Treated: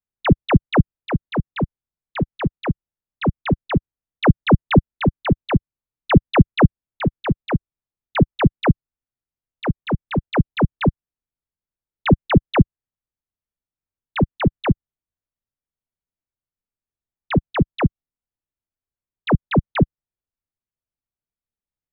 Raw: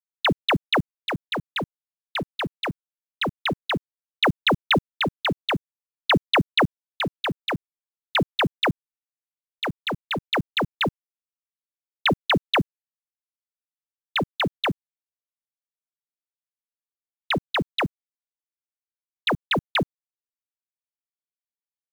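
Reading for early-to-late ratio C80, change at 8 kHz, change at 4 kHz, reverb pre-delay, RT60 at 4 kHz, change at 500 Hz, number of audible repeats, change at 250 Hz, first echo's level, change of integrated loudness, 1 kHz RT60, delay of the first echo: none, n/a, -9.0 dB, none, none, +4.5 dB, none, +9.5 dB, none, +4.5 dB, none, none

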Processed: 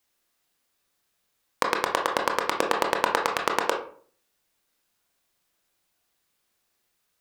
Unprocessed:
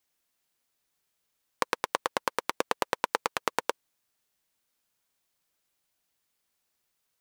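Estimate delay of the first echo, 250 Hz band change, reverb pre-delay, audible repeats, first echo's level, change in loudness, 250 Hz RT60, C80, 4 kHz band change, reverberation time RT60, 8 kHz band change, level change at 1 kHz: none, +7.0 dB, 19 ms, none, none, +5.5 dB, 0.60 s, 13.0 dB, +5.0 dB, 0.50 s, +3.5 dB, +6.0 dB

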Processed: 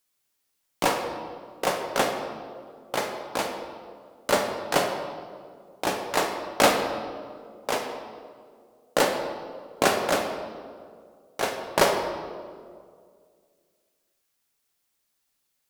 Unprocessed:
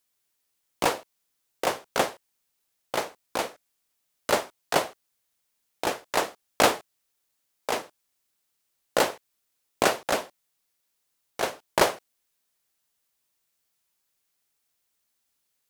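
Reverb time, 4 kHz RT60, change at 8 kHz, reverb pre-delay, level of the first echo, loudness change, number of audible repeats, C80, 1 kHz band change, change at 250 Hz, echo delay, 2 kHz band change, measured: 2.1 s, 1.3 s, +1.0 dB, 4 ms, none, +1.0 dB, none, 6.5 dB, +2.0 dB, +3.5 dB, none, +1.5 dB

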